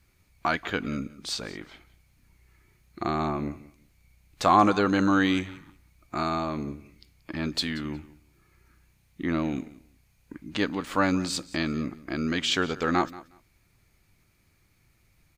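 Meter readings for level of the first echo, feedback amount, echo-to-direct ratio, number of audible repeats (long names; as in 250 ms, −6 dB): −19.0 dB, 17%, −19.0 dB, 2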